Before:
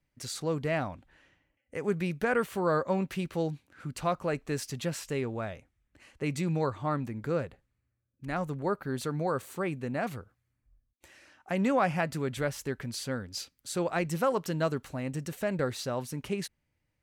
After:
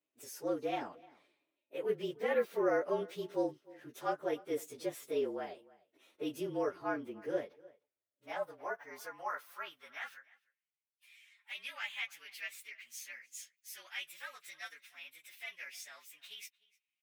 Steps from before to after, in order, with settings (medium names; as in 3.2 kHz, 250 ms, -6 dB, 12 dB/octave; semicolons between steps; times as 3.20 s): frequency axis rescaled in octaves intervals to 111%; echo from a far wall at 52 m, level -22 dB; high-pass sweep 380 Hz -> 2.3 kHz, 7.53–10.82 s; trim -5.5 dB